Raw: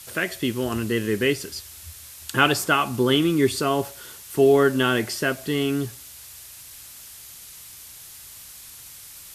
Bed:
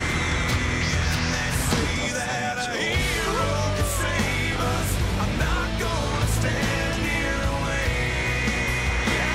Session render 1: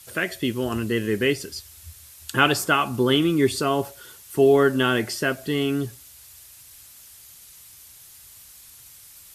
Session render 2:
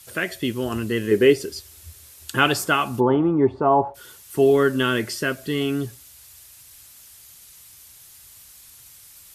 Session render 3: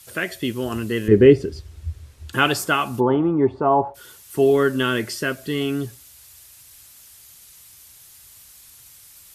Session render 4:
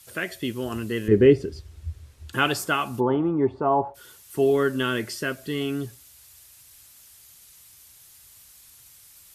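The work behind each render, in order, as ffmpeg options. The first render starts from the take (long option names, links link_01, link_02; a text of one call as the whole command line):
ffmpeg -i in.wav -af "afftdn=noise_reduction=6:noise_floor=-43" out.wav
ffmpeg -i in.wav -filter_complex "[0:a]asettb=1/sr,asplit=3[link_01][link_02][link_03];[link_01]atrim=end=1.114[link_04];[link_02]atrim=start=1.11:end=2.32,asetpts=PTS-STARTPTS,afade=type=in:duration=0.004:curve=qsin,afade=type=out:start_time=1.206:duration=0.004:curve=qsin,equalizer=frequency=390:width_type=o:width=1:gain=9[link_05];[link_03]atrim=start=2.316[link_06];[link_04][link_05]acrossfade=duration=0.004:curve1=hsin:curve2=qsin[link_07];[link_07][link_06]acrossfade=duration=0.004:curve1=qsin:curve2=hsin,asplit=3[link_08][link_09][link_10];[link_08]afade=type=out:start_time=2.99:duration=0.02[link_11];[link_09]lowpass=frequency=870:width_type=q:width=5.4,afade=type=in:start_time=2.99:duration=0.02,afade=type=out:start_time=3.94:duration=0.02[link_12];[link_10]afade=type=in:start_time=3.94:duration=0.02[link_13];[link_11][link_12][link_13]amix=inputs=3:normalize=0,asettb=1/sr,asplit=3[link_14][link_15][link_16];[link_14]atrim=end=4.504[link_17];[link_15]atrim=start=4.5:end=5.61,asetpts=PTS-STARTPTS,afade=type=in:duration=0.004:curve=qsin,afade=type=out:start_time=1.106:duration=0.004:curve=qsin,equalizer=frequency=760:width_type=o:width=0.26:gain=-11.5[link_18];[link_16]atrim=start=5.606[link_19];[link_17][link_18]acrossfade=duration=0.004:curve1=hsin:curve2=qsin[link_20];[link_20][link_19]acrossfade=duration=0.004:curve1=qsin:curve2=hsin" out.wav
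ffmpeg -i in.wav -filter_complex "[0:a]asettb=1/sr,asplit=3[link_01][link_02][link_03];[link_01]atrim=end=1.084[link_04];[link_02]atrim=start=1.08:end=2.33,asetpts=PTS-STARTPTS,afade=type=in:duration=0.004:curve=qsin,afade=type=out:start_time=1.246:duration=0.004:curve=qsin,aemphasis=mode=reproduction:type=riaa[link_05];[link_03]atrim=start=2.326[link_06];[link_04][link_05]acrossfade=duration=0.004:curve1=hsin:curve2=qsin[link_07];[link_07][link_06]acrossfade=duration=0.004:curve1=qsin:curve2=hsin" out.wav
ffmpeg -i in.wav -af "volume=-4dB" out.wav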